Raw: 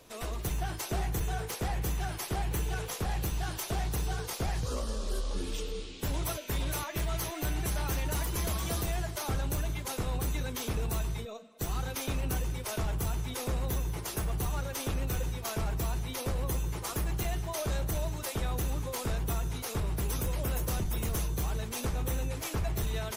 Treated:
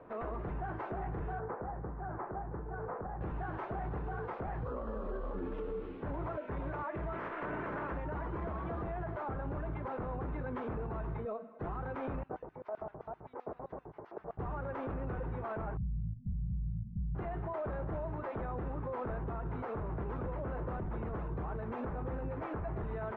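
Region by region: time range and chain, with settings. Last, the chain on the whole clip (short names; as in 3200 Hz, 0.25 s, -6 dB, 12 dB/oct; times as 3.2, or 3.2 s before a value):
1.39–3.21 LPF 1600 Hz 24 dB/oct + compressor 12:1, threshold -37 dBFS
7.12–7.91 spectral limiter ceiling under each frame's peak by 23 dB + bell 4100 Hz -4 dB 0.51 oct + notch 770 Hz, Q 6.4
12.23–14.39 tone controls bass +5 dB, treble -6 dB + notch 530 Hz, Q 10 + LFO band-pass square 7.7 Hz 600–5300 Hz
15.77–17.15 brick-wall FIR band-stop 220–13000 Hz + low shelf 350 Hz +8 dB
whole clip: LPF 1500 Hz 24 dB/oct; low shelf 110 Hz -11.5 dB; limiter -37 dBFS; gain +6 dB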